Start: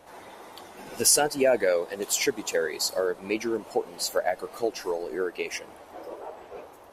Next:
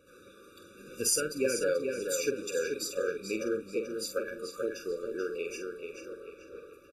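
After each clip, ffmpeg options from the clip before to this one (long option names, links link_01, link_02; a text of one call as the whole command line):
ffmpeg -i in.wav -filter_complex "[0:a]asplit=2[link_01][link_02];[link_02]adelay=46,volume=-8dB[link_03];[link_01][link_03]amix=inputs=2:normalize=0,asplit=2[link_04][link_05];[link_05]adelay=435,lowpass=frequency=4800:poles=1,volume=-5dB,asplit=2[link_06][link_07];[link_07]adelay=435,lowpass=frequency=4800:poles=1,volume=0.38,asplit=2[link_08][link_09];[link_09]adelay=435,lowpass=frequency=4800:poles=1,volume=0.38,asplit=2[link_10][link_11];[link_11]adelay=435,lowpass=frequency=4800:poles=1,volume=0.38,asplit=2[link_12][link_13];[link_13]adelay=435,lowpass=frequency=4800:poles=1,volume=0.38[link_14];[link_04][link_06][link_08][link_10][link_12][link_14]amix=inputs=6:normalize=0,afftfilt=real='re*eq(mod(floor(b*sr/1024/570),2),0)':imag='im*eq(mod(floor(b*sr/1024/570),2),0)':win_size=1024:overlap=0.75,volume=-6dB" out.wav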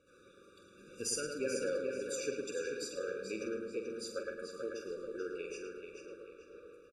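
ffmpeg -i in.wav -filter_complex "[0:a]lowpass=frequency=9600:width=0.5412,lowpass=frequency=9600:width=1.3066,asplit=2[link_01][link_02];[link_02]adelay=109,lowpass=frequency=2700:poles=1,volume=-4dB,asplit=2[link_03][link_04];[link_04]adelay=109,lowpass=frequency=2700:poles=1,volume=0.5,asplit=2[link_05][link_06];[link_06]adelay=109,lowpass=frequency=2700:poles=1,volume=0.5,asplit=2[link_07][link_08];[link_08]adelay=109,lowpass=frequency=2700:poles=1,volume=0.5,asplit=2[link_09][link_10];[link_10]adelay=109,lowpass=frequency=2700:poles=1,volume=0.5,asplit=2[link_11][link_12];[link_12]adelay=109,lowpass=frequency=2700:poles=1,volume=0.5[link_13];[link_01][link_03][link_05][link_07][link_09][link_11][link_13]amix=inputs=7:normalize=0,volume=-7.5dB" out.wav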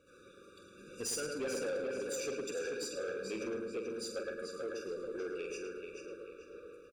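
ffmpeg -i in.wav -af "asoftclip=type=tanh:threshold=-35.5dB,volume=3dB" out.wav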